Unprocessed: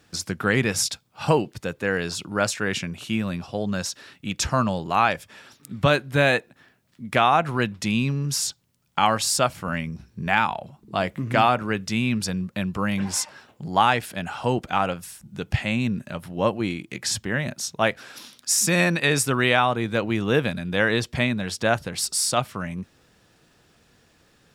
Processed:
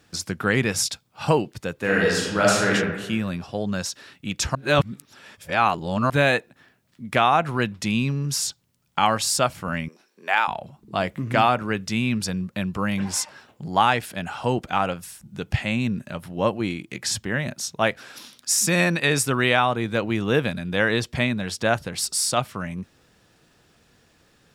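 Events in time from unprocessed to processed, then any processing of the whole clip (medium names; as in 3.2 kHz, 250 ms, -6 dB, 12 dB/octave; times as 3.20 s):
1.76–2.72 s: reverb throw, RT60 1.2 s, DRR -4.5 dB
4.55–6.10 s: reverse
9.88–10.48 s: high-pass 380 Hz 24 dB/octave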